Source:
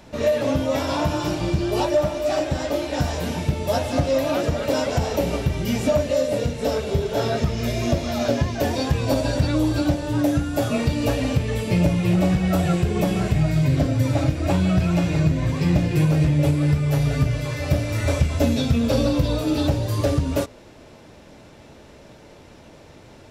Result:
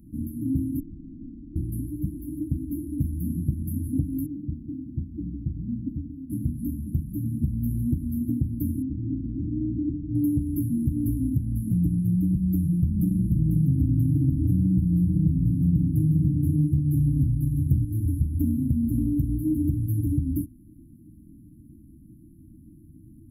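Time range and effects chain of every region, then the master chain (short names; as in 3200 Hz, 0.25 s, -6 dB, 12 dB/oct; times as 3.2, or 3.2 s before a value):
0.8–1.56 high shelf 2100 Hz +9.5 dB + inverted band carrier 3200 Hz
4.26–6.3 CVSD 32 kbps + tilt shelf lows -6.5 dB, about 1400 Hz
8.82–10.15 LPF 1100 Hz + core saturation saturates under 870 Hz
12.77–17.85 low shelf 500 Hz +4.5 dB + notches 50/100/150/200/250/300/350/400/450 Hz + echo 0.495 s -5 dB
whole clip: FFT band-reject 340–10000 Hz; compressor 2.5:1, threshold -21 dBFS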